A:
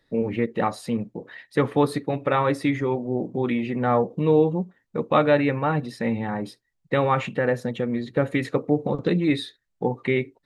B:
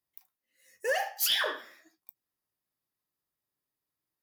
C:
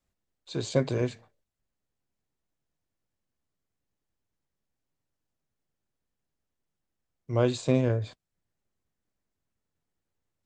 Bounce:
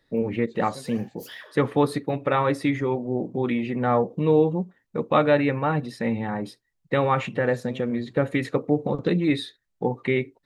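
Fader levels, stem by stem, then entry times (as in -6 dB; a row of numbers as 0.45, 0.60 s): -0.5, -18.0, -17.5 dB; 0.00, 0.00, 0.00 s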